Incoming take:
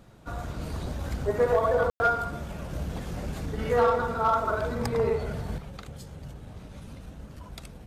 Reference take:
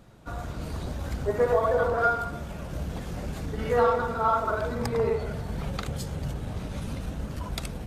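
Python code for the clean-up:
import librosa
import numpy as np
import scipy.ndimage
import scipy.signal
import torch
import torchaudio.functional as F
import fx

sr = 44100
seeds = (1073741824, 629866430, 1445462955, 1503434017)

y = fx.fix_declip(x, sr, threshold_db=-15.0)
y = fx.fix_ambience(y, sr, seeds[0], print_start_s=0.0, print_end_s=0.5, start_s=1.9, end_s=2.0)
y = fx.fix_level(y, sr, at_s=5.58, step_db=9.5)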